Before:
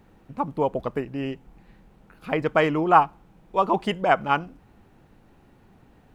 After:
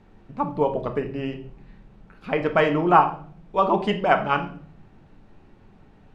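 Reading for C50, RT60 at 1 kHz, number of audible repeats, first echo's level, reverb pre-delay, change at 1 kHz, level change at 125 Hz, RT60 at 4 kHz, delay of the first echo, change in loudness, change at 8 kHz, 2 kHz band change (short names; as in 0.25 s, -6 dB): 11.5 dB, 0.40 s, none, none, 3 ms, +0.5 dB, +2.0 dB, 0.45 s, none, +1.0 dB, n/a, +1.0 dB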